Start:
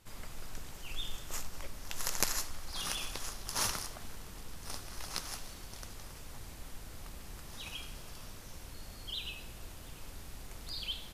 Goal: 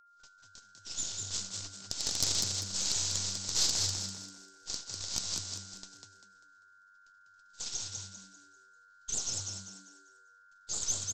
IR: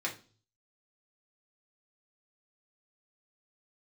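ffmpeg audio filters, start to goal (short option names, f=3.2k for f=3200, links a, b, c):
-filter_complex "[0:a]highpass=f=200:p=1,agate=range=-42dB:threshold=-47dB:ratio=16:detection=peak,aresample=16000,aeval=exprs='abs(val(0))':c=same,aresample=44100,aeval=exprs='val(0)+0.00126*sin(2*PI*1400*n/s)':c=same,asoftclip=type=tanh:threshold=-24.5dB,highshelf=f=3.2k:t=q:w=1.5:g=12,asplit=2[a][b];[b]asplit=5[c][d][e][f][g];[c]adelay=197,afreqshift=96,volume=-4dB[h];[d]adelay=394,afreqshift=192,volume=-12.9dB[i];[e]adelay=591,afreqshift=288,volume=-21.7dB[j];[f]adelay=788,afreqshift=384,volume=-30.6dB[k];[g]adelay=985,afreqshift=480,volume=-39.5dB[l];[h][i][j][k][l]amix=inputs=5:normalize=0[m];[a][m]amix=inputs=2:normalize=0"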